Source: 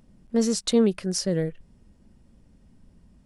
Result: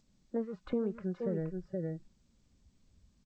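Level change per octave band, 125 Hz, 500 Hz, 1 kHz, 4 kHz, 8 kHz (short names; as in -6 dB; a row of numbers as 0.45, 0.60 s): -7.5 dB, -10.0 dB, -10.5 dB, under -30 dB, under -40 dB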